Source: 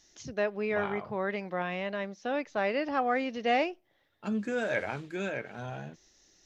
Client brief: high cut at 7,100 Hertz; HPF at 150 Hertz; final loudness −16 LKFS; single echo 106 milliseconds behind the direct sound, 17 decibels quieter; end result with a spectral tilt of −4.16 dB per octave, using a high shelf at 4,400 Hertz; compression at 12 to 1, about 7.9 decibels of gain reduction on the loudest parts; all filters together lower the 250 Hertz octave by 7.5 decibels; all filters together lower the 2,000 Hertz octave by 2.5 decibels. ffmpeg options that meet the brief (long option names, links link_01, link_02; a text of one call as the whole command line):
ffmpeg -i in.wav -af "highpass=150,lowpass=7100,equalizer=frequency=250:width_type=o:gain=-8.5,equalizer=frequency=2000:width_type=o:gain=-4.5,highshelf=frequency=4400:gain=7.5,acompressor=threshold=-32dB:ratio=12,aecho=1:1:106:0.141,volume=22.5dB" out.wav